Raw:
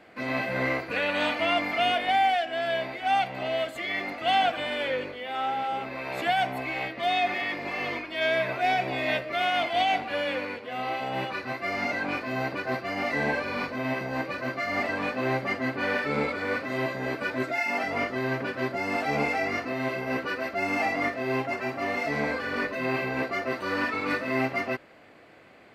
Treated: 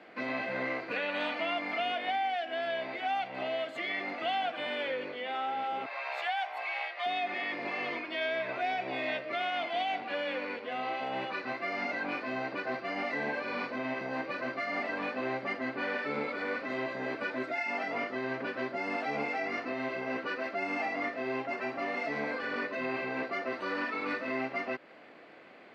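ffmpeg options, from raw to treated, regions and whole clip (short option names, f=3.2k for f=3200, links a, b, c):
-filter_complex "[0:a]asettb=1/sr,asplit=3[a][b][c];[a]atrim=end=5.864[d];[b]atrim=start=5.86:end=7.06,asetpts=PTS-STARTPTS,afade=t=in:d=0.004:c=qsin,afade=t=out:st=1.196:d=0.004:c=qsin,highpass=f=620:w=0.5412,highpass=f=620:w=1.3066,afreqshift=25[e];[c]atrim=start=7.056[f];[d][e]acrossfade=d=0.004:c1=hsin:c2=qsin[g];[g][f]acrossfade=d=0.004:c1=qsin:c2=hsin,acompressor=threshold=-33dB:ratio=2.5,acrossover=split=160 5600:gain=0.0708 1 0.126[h][i][j];[h][i][j]amix=inputs=3:normalize=0"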